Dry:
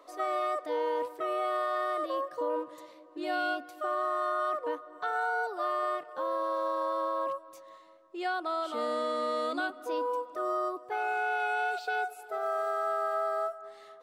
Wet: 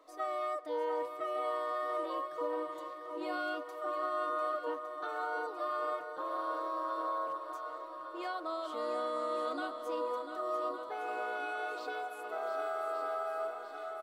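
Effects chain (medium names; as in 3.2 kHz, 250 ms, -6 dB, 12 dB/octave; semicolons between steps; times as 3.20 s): comb 6.4 ms, depth 46%; shuffle delay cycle 1159 ms, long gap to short 1.5:1, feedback 61%, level -9.5 dB; trim -7 dB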